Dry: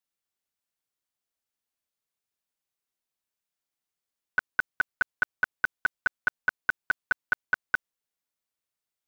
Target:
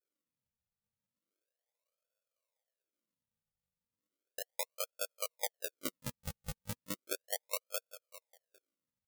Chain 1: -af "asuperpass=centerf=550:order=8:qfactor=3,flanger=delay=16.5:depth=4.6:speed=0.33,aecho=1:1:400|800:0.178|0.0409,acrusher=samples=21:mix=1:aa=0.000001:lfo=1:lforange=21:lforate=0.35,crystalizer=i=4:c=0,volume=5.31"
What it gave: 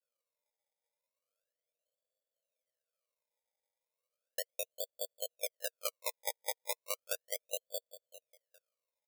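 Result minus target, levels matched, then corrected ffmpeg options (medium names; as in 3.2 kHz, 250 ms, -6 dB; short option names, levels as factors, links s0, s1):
decimation with a swept rate: distortion -15 dB
-af "asuperpass=centerf=550:order=8:qfactor=3,flanger=delay=16.5:depth=4.6:speed=0.33,aecho=1:1:400|800:0.178|0.0409,acrusher=samples=44:mix=1:aa=0.000001:lfo=1:lforange=44:lforate=0.35,crystalizer=i=4:c=0,volume=5.31"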